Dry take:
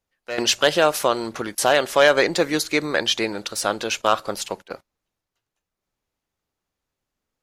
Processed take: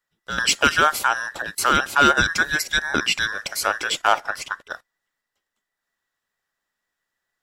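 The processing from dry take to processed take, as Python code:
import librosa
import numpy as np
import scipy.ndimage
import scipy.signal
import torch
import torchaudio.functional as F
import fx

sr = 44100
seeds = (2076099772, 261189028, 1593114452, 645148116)

p1 = fx.band_invert(x, sr, width_hz=2000)
p2 = fx.high_shelf(p1, sr, hz=5200.0, db=-9.5, at=(4.18, 4.64))
p3 = fx.rider(p2, sr, range_db=4, speed_s=2.0)
p4 = p2 + F.gain(torch.from_numpy(p3), -2.5).numpy()
y = F.gain(torch.from_numpy(p4), -5.5).numpy()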